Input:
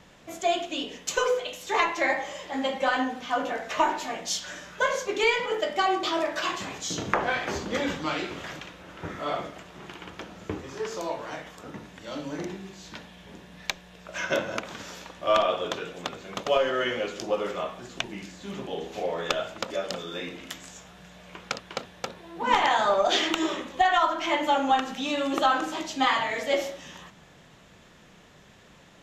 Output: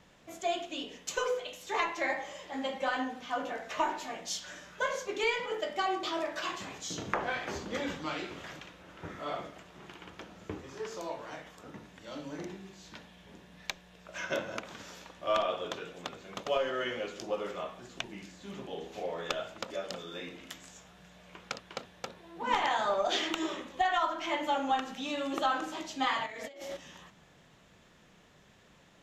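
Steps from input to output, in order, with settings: 26.26–26.77 s: compressor with a negative ratio -37 dBFS, ratio -1; trim -7 dB

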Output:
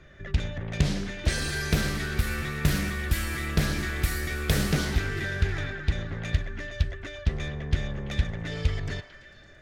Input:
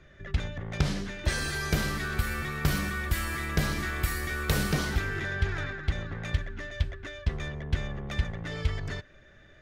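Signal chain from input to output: dynamic bell 1.1 kHz, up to -7 dB, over -49 dBFS, Q 1.2; repeats whose band climbs or falls 112 ms, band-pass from 900 Hz, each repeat 0.7 oct, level -7 dB; loudspeaker Doppler distortion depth 0.36 ms; trim +3 dB

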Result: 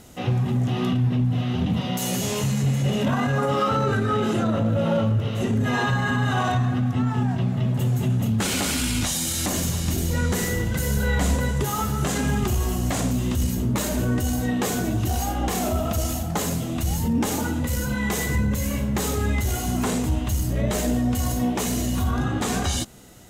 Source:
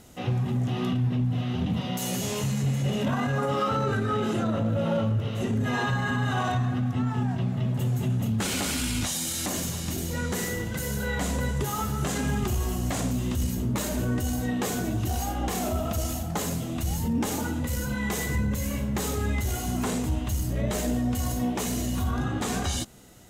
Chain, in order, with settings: 9.06–11.35 s: bass shelf 76 Hz +11 dB; trim +4 dB

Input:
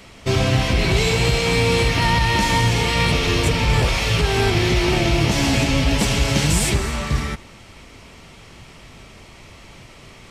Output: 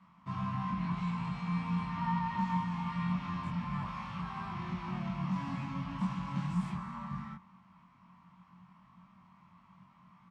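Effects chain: two resonant band-passes 440 Hz, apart 2.5 oct; doubling 22 ms -2 dB; trim -7 dB

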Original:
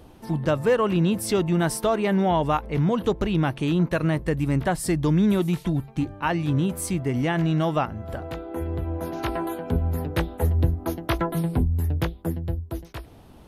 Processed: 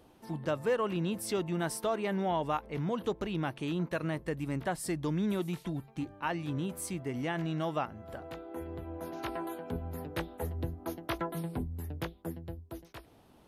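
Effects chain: bass shelf 120 Hz -11.5 dB; trim -8.5 dB

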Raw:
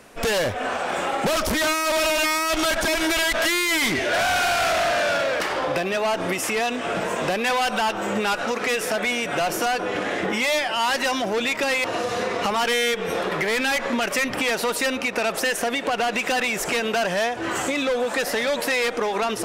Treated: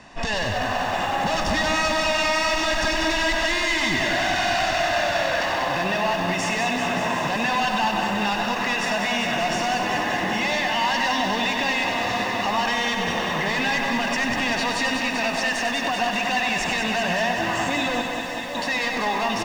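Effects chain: low-pass 6.5 kHz 24 dB/octave; comb 1.1 ms, depth 66%; peak limiter -19 dBFS, peak gain reduction 8 dB; 18.01–18.55 s: inharmonic resonator 78 Hz, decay 0.63 s, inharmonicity 0.002; delay 96 ms -8 dB; bit-crushed delay 193 ms, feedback 80%, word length 8-bit, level -6 dB; trim +1 dB

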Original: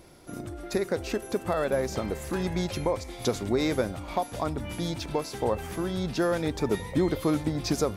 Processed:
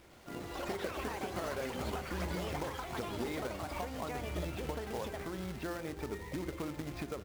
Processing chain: FFT filter 330 Hz 0 dB, 2.2 kHz +5 dB, 5.8 kHz -18 dB, 8.9 kHz -26 dB; compression 3:1, threshold -30 dBFS, peak gain reduction 8 dB; companded quantiser 4-bit; tempo 1.1×; ever faster or slower copies 103 ms, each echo +6 st, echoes 3; on a send: reverberation RT60 0.60 s, pre-delay 3 ms, DRR 14 dB; on the sum: trim -8.5 dB

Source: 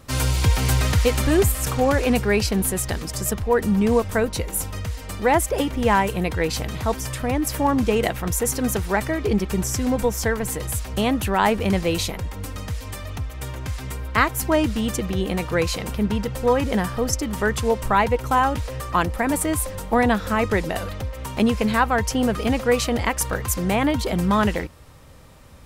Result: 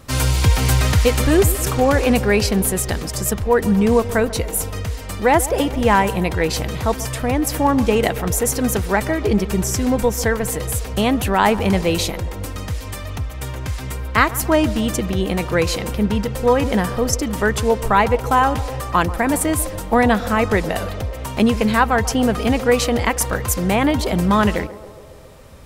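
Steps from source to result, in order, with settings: band-passed feedback delay 138 ms, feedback 73%, band-pass 520 Hz, level -14.5 dB; trim +3.5 dB

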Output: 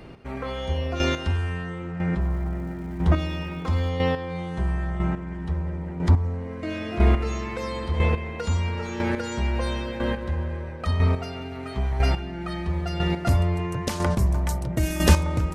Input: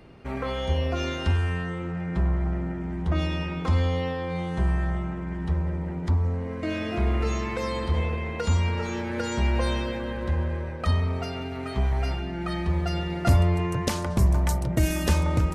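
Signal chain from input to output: square tremolo 1 Hz, depth 60%, duty 15%; 2.20–3.89 s: crackle 480 per s -54 dBFS; trim +6.5 dB

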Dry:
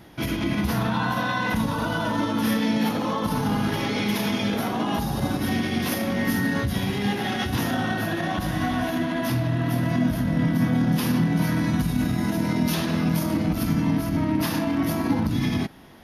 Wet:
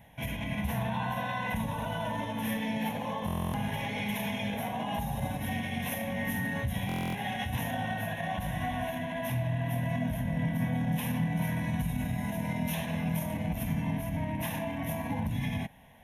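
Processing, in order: static phaser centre 1.3 kHz, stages 6; buffer glitch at 3.26/6.87 s, samples 1024, times 11; trim -4.5 dB

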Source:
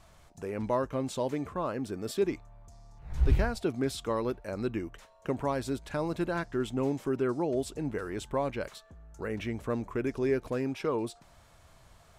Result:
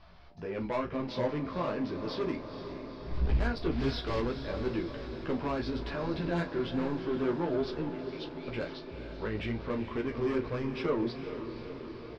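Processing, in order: 3.71–4.21 s: block-companded coder 3-bit; elliptic low-pass 5 kHz, stop band 40 dB; 5.67–6.35 s: transient shaper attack -6 dB, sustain +5 dB; 7.88–8.48 s: Chebyshev high-pass 2.3 kHz, order 5; saturation -28.5 dBFS, distortion -10 dB; chorus voices 4, 1 Hz, delay 15 ms, depth 3.7 ms; doubling 34 ms -11.5 dB; echo that smears into a reverb 464 ms, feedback 68%, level -9.5 dB; trim +5 dB

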